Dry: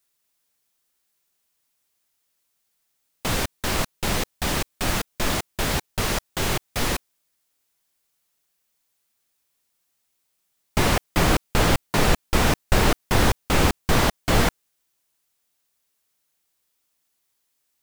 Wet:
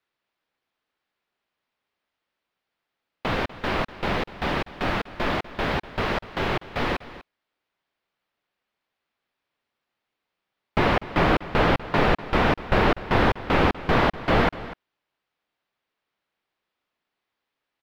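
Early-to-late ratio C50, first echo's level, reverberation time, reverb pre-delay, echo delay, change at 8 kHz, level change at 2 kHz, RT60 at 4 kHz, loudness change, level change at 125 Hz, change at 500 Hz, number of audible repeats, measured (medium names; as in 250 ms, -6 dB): no reverb, -16.5 dB, no reverb, no reverb, 246 ms, -21.5 dB, +0.5 dB, no reverb, -1.0 dB, -2.5 dB, +2.0 dB, 1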